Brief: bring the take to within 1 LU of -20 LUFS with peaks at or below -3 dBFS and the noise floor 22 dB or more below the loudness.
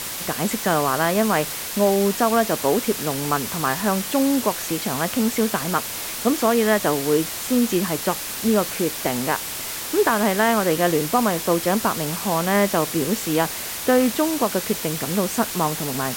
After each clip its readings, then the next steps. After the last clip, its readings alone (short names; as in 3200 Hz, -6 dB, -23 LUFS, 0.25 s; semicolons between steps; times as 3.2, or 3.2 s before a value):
noise floor -30 dBFS; noise floor target -43 dBFS; loudness -21.0 LUFS; peak -6.0 dBFS; loudness target -20.0 LUFS
-> noise print and reduce 13 dB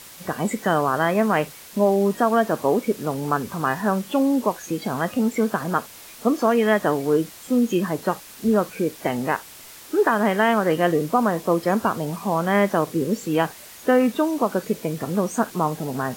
noise floor -43 dBFS; noise floor target -45 dBFS
-> noise print and reduce 6 dB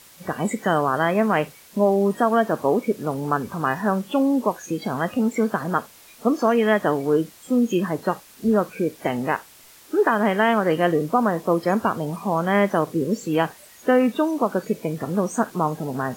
noise floor -49 dBFS; loudness -22.5 LUFS; peak -7.0 dBFS; loudness target -20.0 LUFS
-> gain +2.5 dB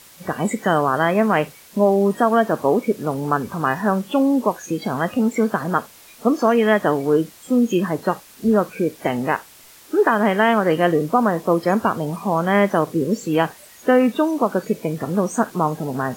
loudness -20.0 LUFS; peak -4.5 dBFS; noise floor -46 dBFS